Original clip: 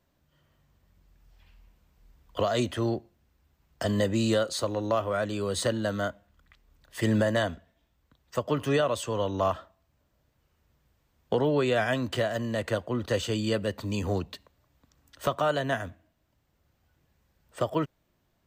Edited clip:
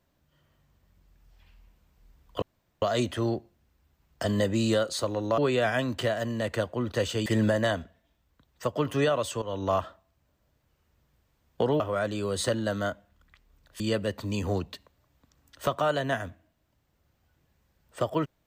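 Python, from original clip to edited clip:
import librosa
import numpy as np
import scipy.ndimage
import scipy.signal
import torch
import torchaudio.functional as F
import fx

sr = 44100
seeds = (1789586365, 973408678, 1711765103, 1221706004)

y = fx.edit(x, sr, fx.insert_room_tone(at_s=2.42, length_s=0.4),
    fx.swap(start_s=4.98, length_s=2.0, other_s=11.52, other_length_s=1.88),
    fx.fade_in_from(start_s=9.14, length_s=0.28, curve='qsin', floor_db=-15.5), tone=tone)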